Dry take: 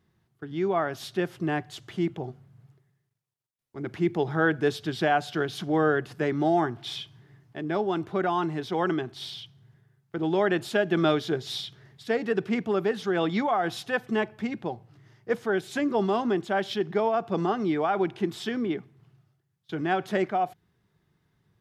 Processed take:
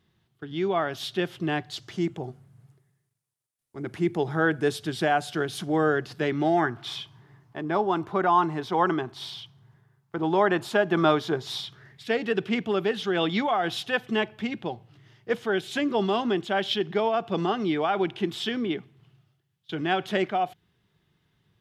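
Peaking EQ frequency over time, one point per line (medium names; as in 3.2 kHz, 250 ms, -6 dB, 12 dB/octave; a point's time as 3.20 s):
peaking EQ +9 dB 0.78 oct
1.56 s 3.3 kHz
2.28 s 9.5 kHz
5.77 s 9.5 kHz
6.26 s 3.2 kHz
6.98 s 1 kHz
11.66 s 1 kHz
12.15 s 3.1 kHz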